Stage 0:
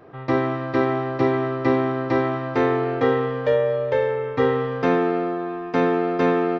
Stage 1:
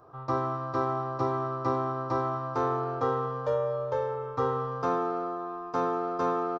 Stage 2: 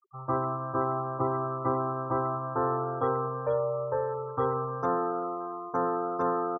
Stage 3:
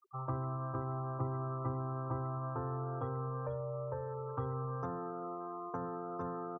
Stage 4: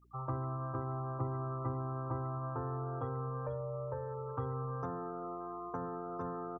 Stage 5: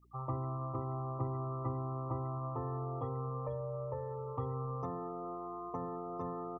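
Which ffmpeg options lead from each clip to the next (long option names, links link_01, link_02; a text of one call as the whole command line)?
ffmpeg -i in.wav -af "firequalizer=gain_entry='entry(130,0);entry(190,-10);entry(320,-6);entry(1200,7);entry(1900,-16);entry(5600,4)':delay=0.05:min_phase=1,volume=-6dB" out.wav
ffmpeg -i in.wav -af "afftfilt=real='re*gte(hypot(re,im),0.0141)':imag='im*gte(hypot(re,im),0.0141)':win_size=1024:overlap=0.75" out.wav
ffmpeg -i in.wav -filter_complex "[0:a]acrossover=split=170[link_01][link_02];[link_02]acompressor=threshold=-40dB:ratio=10[link_03];[link_01][link_03]amix=inputs=2:normalize=0,volume=1dB" out.wav
ffmpeg -i in.wav -af "aeval=exprs='val(0)+0.000562*(sin(2*PI*60*n/s)+sin(2*PI*2*60*n/s)/2+sin(2*PI*3*60*n/s)/3+sin(2*PI*4*60*n/s)/4+sin(2*PI*5*60*n/s)/5)':channel_layout=same" out.wav
ffmpeg -i in.wav -af "asuperstop=centerf=1500:order=20:qfactor=3.6" out.wav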